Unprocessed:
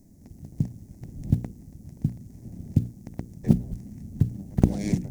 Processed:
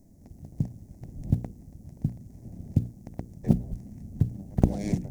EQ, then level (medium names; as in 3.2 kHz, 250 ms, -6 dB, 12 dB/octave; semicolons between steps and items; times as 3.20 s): bass shelf 100 Hz +5.5 dB; peaking EQ 650 Hz +6.5 dB 1.2 oct; -4.5 dB